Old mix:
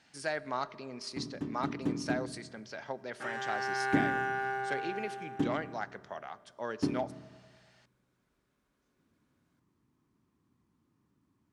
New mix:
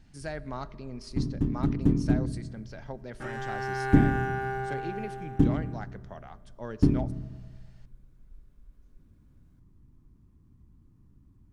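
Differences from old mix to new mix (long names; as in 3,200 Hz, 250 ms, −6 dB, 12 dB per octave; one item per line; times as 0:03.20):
speech −4.5 dB
master: remove meter weighting curve A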